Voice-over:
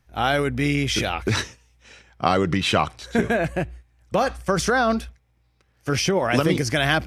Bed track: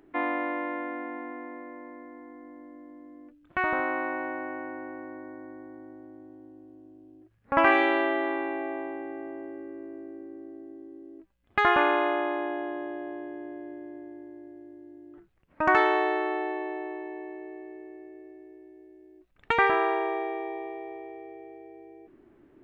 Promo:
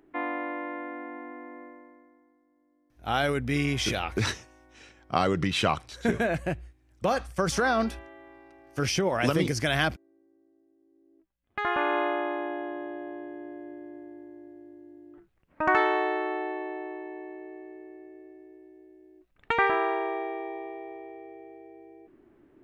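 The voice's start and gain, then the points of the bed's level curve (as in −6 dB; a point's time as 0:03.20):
2.90 s, −5.0 dB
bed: 0:01.64 −3 dB
0:02.45 −22 dB
0:10.76 −22 dB
0:11.98 −1.5 dB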